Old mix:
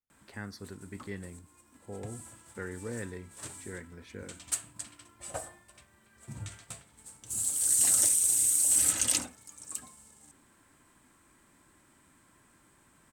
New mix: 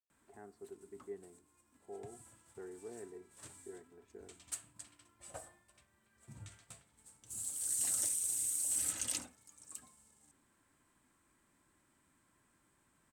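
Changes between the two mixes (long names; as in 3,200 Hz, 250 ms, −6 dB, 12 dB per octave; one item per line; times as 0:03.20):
speech: add pair of resonant band-passes 530 Hz, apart 0.78 octaves
background −10.5 dB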